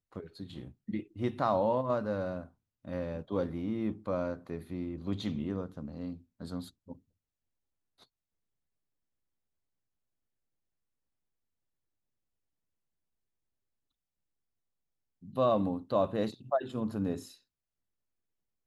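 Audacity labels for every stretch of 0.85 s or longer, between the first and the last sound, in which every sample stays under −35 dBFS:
6.920000	15.370000	silence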